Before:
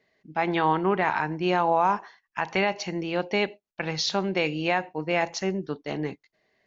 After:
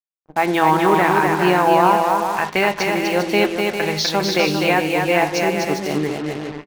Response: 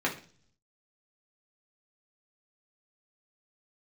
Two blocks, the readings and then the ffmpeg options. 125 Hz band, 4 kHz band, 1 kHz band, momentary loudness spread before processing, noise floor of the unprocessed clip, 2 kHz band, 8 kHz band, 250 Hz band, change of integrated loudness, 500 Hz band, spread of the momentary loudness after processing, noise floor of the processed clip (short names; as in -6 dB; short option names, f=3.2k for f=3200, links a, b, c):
+7.5 dB, +8.5 dB, +9.0 dB, 10 LU, -79 dBFS, +9.0 dB, n/a, +9.0 dB, +9.0 dB, +9.0 dB, 7 LU, -53 dBFS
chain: -filter_complex "[0:a]aecho=1:1:250|400|490|544|576.4:0.631|0.398|0.251|0.158|0.1,acrusher=bits=5:mix=0:aa=0.5,asplit=2[a][b];[1:a]atrim=start_sample=2205[c];[b][c]afir=irnorm=-1:irlink=0,volume=-18dB[d];[a][d]amix=inputs=2:normalize=0,volume=5dB"